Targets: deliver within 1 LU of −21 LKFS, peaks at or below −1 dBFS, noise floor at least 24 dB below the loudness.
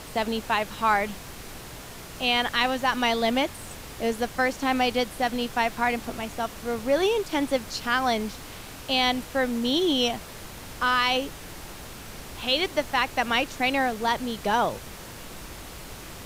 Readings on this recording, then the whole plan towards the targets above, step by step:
background noise floor −41 dBFS; target noise floor −50 dBFS; integrated loudness −25.5 LKFS; sample peak −8.5 dBFS; target loudness −21.0 LKFS
→ noise reduction from a noise print 9 dB
level +4.5 dB

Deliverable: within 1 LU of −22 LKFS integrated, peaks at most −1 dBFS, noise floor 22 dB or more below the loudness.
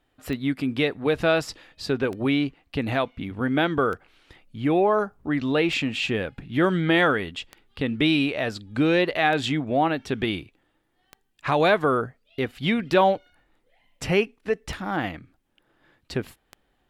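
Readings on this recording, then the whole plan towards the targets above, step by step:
number of clicks 10; integrated loudness −24.5 LKFS; sample peak −7.0 dBFS; target loudness −22.0 LKFS
→ click removal
level +2.5 dB

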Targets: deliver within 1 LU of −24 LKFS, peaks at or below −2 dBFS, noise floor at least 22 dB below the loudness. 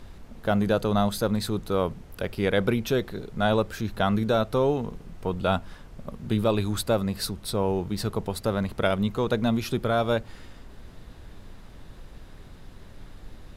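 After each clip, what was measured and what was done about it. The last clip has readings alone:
background noise floor −47 dBFS; target noise floor −49 dBFS; integrated loudness −26.5 LKFS; sample peak −10.5 dBFS; target loudness −24.0 LKFS
→ noise reduction from a noise print 6 dB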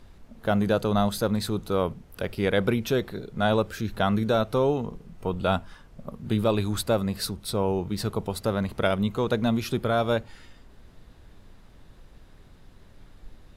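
background noise floor −52 dBFS; integrated loudness −26.5 LKFS; sample peak −10.0 dBFS; target loudness −24.0 LKFS
→ level +2.5 dB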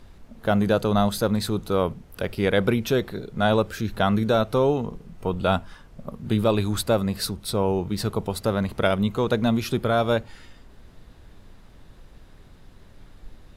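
integrated loudness −24.0 LKFS; sample peak −7.5 dBFS; background noise floor −50 dBFS

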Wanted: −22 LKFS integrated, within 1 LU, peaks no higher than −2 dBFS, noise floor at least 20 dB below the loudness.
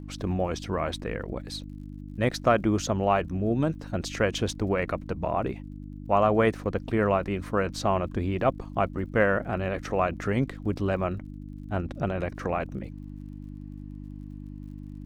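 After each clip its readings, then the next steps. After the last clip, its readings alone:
crackle rate 44 per second; mains hum 50 Hz; hum harmonics up to 300 Hz; level of the hum −37 dBFS; integrated loudness −28.0 LKFS; sample peak −9.0 dBFS; target loudness −22.0 LKFS
→ click removal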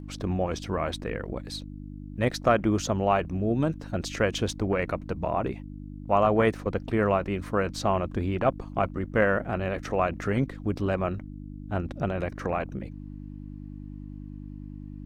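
crackle rate 0.27 per second; mains hum 50 Hz; hum harmonics up to 300 Hz; level of the hum −37 dBFS
→ hum removal 50 Hz, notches 6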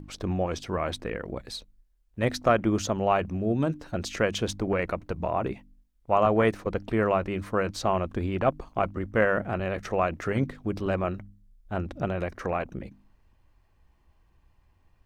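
mains hum none found; integrated loudness −28.0 LKFS; sample peak −9.0 dBFS; target loudness −22.0 LKFS
→ level +6 dB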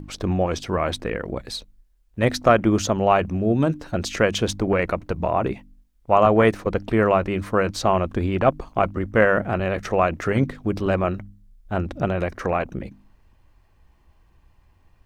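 integrated loudness −22.0 LKFS; sample peak −3.0 dBFS; background noise floor −59 dBFS

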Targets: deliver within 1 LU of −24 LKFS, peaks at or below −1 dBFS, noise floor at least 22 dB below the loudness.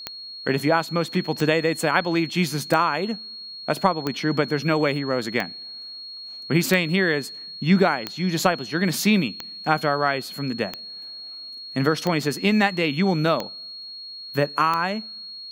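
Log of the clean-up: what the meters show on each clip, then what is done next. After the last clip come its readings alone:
number of clicks 12; interfering tone 4,300 Hz; level of the tone −35 dBFS; integrated loudness −23.0 LKFS; sample peak −3.0 dBFS; target loudness −24.0 LKFS
→ click removal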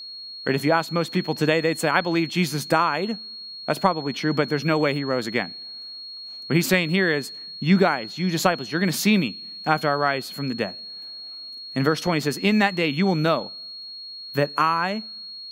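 number of clicks 0; interfering tone 4,300 Hz; level of the tone −35 dBFS
→ notch filter 4,300 Hz, Q 30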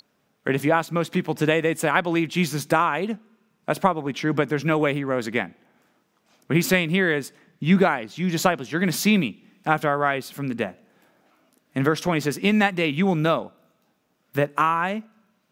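interfering tone none found; integrated loudness −23.0 LKFS; sample peak −3.0 dBFS; target loudness −24.0 LKFS
→ level −1 dB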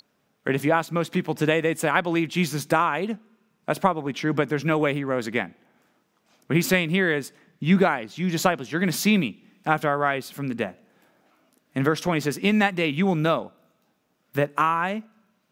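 integrated loudness −24.0 LKFS; sample peak −4.0 dBFS; background noise floor −70 dBFS

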